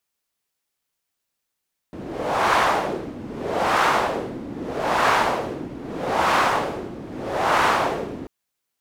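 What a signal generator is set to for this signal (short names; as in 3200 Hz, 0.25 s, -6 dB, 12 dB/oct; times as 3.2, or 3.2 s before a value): wind-like swept noise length 6.34 s, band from 260 Hz, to 1100 Hz, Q 1.6, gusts 5, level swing 16 dB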